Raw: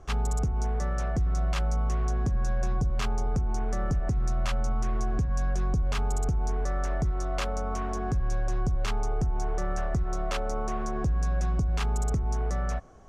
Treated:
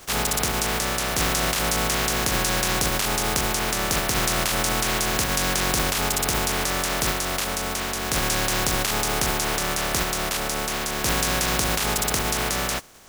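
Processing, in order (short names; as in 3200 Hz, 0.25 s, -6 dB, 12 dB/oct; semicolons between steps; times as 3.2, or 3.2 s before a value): spectral contrast lowered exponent 0.26; gain +2.5 dB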